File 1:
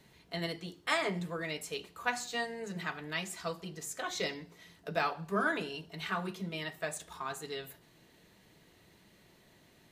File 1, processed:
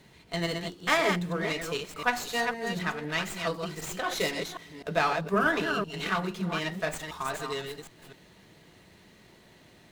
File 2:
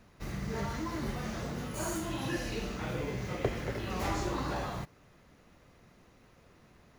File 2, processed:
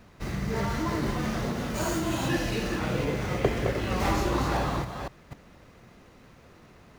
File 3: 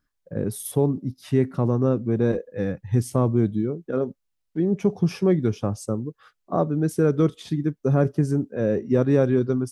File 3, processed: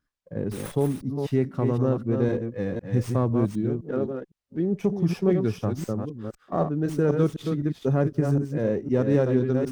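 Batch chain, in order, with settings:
reverse delay 0.254 s, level -5.5 dB; running maximum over 3 samples; normalise peaks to -9 dBFS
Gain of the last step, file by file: +6.0, +6.5, -3.0 dB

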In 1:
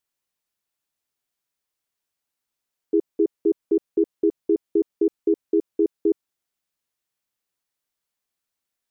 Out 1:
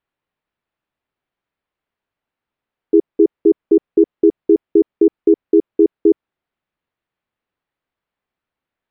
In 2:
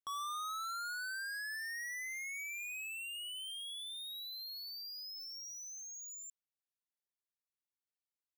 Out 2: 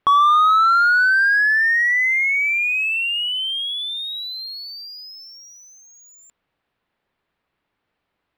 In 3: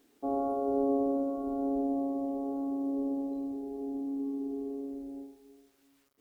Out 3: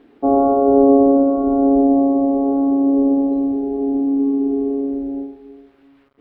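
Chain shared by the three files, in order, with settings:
air absorption 460 m; match loudness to -16 LUFS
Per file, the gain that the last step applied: +9.5, +30.0, +18.0 dB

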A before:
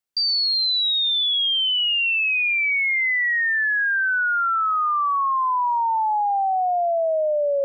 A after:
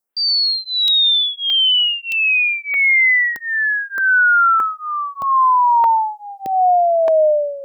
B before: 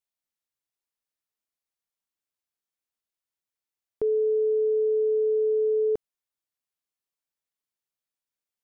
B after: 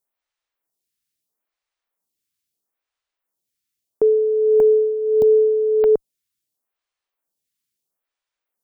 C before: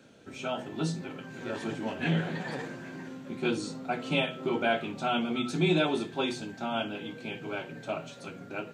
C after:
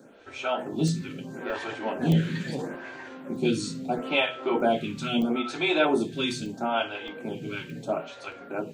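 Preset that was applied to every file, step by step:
crackling interface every 0.62 s, samples 64, zero, from 0.88; photocell phaser 0.76 Hz; normalise peaks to -9 dBFS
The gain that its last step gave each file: +9.0, +10.5, +7.0 dB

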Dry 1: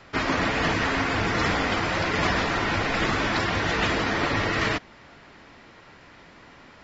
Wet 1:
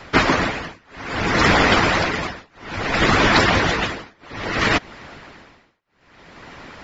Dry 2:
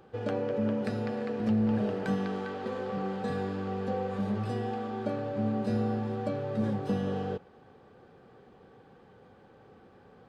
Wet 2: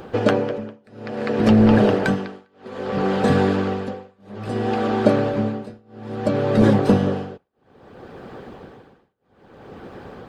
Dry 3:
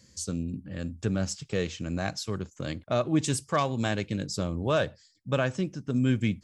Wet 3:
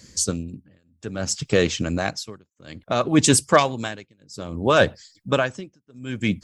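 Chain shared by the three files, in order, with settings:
tremolo 0.6 Hz, depth 99%; harmonic-percussive split harmonic -10 dB; normalise peaks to -1.5 dBFS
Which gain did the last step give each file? +13.5, +22.5, +14.5 dB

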